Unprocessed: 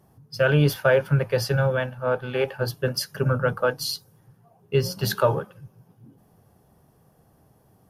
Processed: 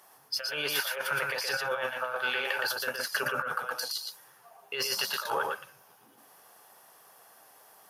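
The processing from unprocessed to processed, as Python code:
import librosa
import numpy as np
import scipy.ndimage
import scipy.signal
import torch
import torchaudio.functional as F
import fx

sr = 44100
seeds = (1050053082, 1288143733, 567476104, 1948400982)

y = scipy.signal.sosfilt(scipy.signal.butter(2, 1100.0, 'highpass', fs=sr, output='sos'), x)
y = fx.over_compress(y, sr, threshold_db=-39.0, ratio=-1.0)
y = y + 10.0 ** (-3.5 / 20.0) * np.pad(y, (int(117 * sr / 1000.0), 0))[:len(y)]
y = y * 10.0 ** (5.0 / 20.0)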